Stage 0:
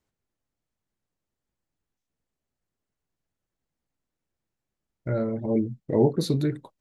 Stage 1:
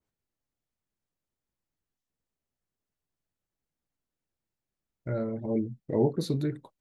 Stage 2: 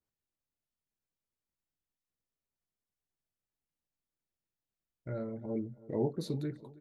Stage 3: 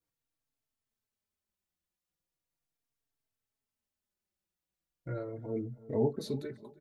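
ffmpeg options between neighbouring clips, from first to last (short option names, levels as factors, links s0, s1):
-af "adynamicequalizer=threshold=0.00794:dfrequency=2200:dqfactor=0.7:tfrequency=2200:tqfactor=0.7:attack=5:release=100:ratio=0.375:range=1.5:mode=cutabove:tftype=highshelf,volume=0.596"
-filter_complex "[0:a]asplit=2[s0][s1];[s1]adelay=325,lowpass=f=1600:p=1,volume=0.106,asplit=2[s2][s3];[s3]adelay=325,lowpass=f=1600:p=1,volume=0.5,asplit=2[s4][s5];[s5]adelay=325,lowpass=f=1600:p=1,volume=0.5,asplit=2[s6][s7];[s7]adelay=325,lowpass=f=1600:p=1,volume=0.5[s8];[s0][s2][s4][s6][s8]amix=inputs=5:normalize=0,volume=0.447"
-filter_complex "[0:a]asplit=2[s0][s1];[s1]adelay=3.8,afreqshift=-0.38[s2];[s0][s2]amix=inputs=2:normalize=1,volume=1.68"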